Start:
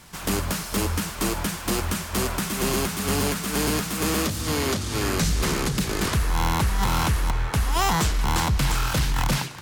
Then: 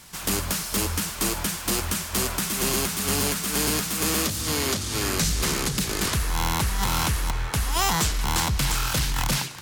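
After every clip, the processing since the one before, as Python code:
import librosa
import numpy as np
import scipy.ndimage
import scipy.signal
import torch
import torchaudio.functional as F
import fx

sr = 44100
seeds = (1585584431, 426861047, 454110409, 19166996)

y = fx.high_shelf(x, sr, hz=2600.0, db=7.5)
y = y * 10.0 ** (-3.0 / 20.0)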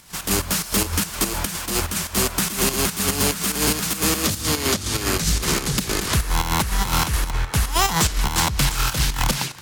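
y = fx.volume_shaper(x, sr, bpm=145, per_beat=2, depth_db=-9, release_ms=98.0, shape='slow start')
y = np.clip(y, -10.0 ** (-18.0 / 20.0), 10.0 ** (-18.0 / 20.0))
y = y * 10.0 ** (5.5 / 20.0)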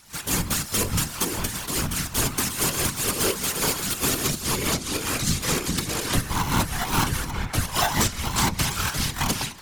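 y = fx.stiff_resonator(x, sr, f0_hz=79.0, decay_s=0.22, stiffness=0.008)
y = fx.whisperise(y, sr, seeds[0])
y = y * 10.0 ** (4.0 / 20.0)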